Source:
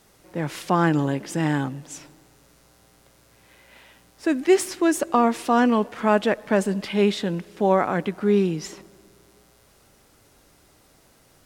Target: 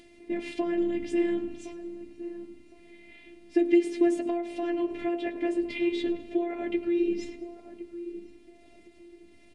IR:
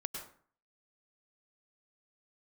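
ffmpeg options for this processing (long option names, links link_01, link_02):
-filter_complex "[0:a]atempo=1.2,asplit=2[link_01][link_02];[link_02]asplit=4[link_03][link_04][link_05][link_06];[link_03]adelay=105,afreqshift=-57,volume=-20dB[link_07];[link_04]adelay=210,afreqshift=-114,volume=-25.4dB[link_08];[link_05]adelay=315,afreqshift=-171,volume=-30.7dB[link_09];[link_06]adelay=420,afreqshift=-228,volume=-36.1dB[link_10];[link_07][link_08][link_09][link_10]amix=inputs=4:normalize=0[link_11];[link_01][link_11]amix=inputs=2:normalize=0,flanger=delay=8.3:depth=8.2:regen=38:speed=0.46:shape=triangular,bandreject=frequency=45.2:width_type=h:width=4,bandreject=frequency=90.4:width_type=h:width=4,bandreject=frequency=135.6:width_type=h:width=4,bandreject=frequency=180.8:width_type=h:width=4,bandreject=frequency=226:width_type=h:width=4,bandreject=frequency=271.2:width_type=h:width=4,bandreject=frequency=316.4:width_type=h:width=4,bandreject=frequency=361.6:width_type=h:width=4,bandreject=frequency=406.8:width_type=h:width=4,bandreject=frequency=452:width_type=h:width=4,bandreject=frequency=497.2:width_type=h:width=4,bandreject=frequency=542.4:width_type=h:width=4,bandreject=frequency=587.6:width_type=h:width=4,bandreject=frequency=632.8:width_type=h:width=4,bandreject=frequency=678:width_type=h:width=4,bandreject=frequency=723.2:width_type=h:width=4,bandreject=frequency=768.4:width_type=h:width=4,bandreject=frequency=813.6:width_type=h:width=4,bandreject=frequency=858.8:width_type=h:width=4,bandreject=frequency=904:width_type=h:width=4,bandreject=frequency=949.2:width_type=h:width=4,bandreject=frequency=994.4:width_type=h:width=4,bandreject=frequency=1039.6:width_type=h:width=4,bandreject=frequency=1084.8:width_type=h:width=4,bandreject=frequency=1130:width_type=h:width=4,bandreject=frequency=1175.2:width_type=h:width=4,bandreject=frequency=1220.4:width_type=h:width=4,bandreject=frequency=1265.6:width_type=h:width=4,bandreject=frequency=1310.8:width_type=h:width=4,bandreject=frequency=1356:width_type=h:width=4,bandreject=frequency=1401.2:width_type=h:width=4,bandreject=frequency=1446.4:width_type=h:width=4,acompressor=threshold=-27dB:ratio=5,afftfilt=real='hypot(re,im)*cos(PI*b)':imag='0':win_size=512:overlap=0.75,firequalizer=gain_entry='entry(120,0);entry(190,8);entry(1200,-19);entry(2100,2);entry(5700,-13)':delay=0.05:min_phase=1,asplit=2[link_12][link_13];[link_13]adelay=1063,lowpass=frequency=810:poles=1,volume=-11.5dB,asplit=2[link_14][link_15];[link_15]adelay=1063,lowpass=frequency=810:poles=1,volume=0.25,asplit=2[link_16][link_17];[link_17]adelay=1063,lowpass=frequency=810:poles=1,volume=0.25[link_18];[link_14][link_16][link_18]amix=inputs=3:normalize=0[link_19];[link_12][link_19]amix=inputs=2:normalize=0,acompressor=mode=upward:threshold=-53dB:ratio=2.5,aresample=22050,aresample=44100,volume=6dB"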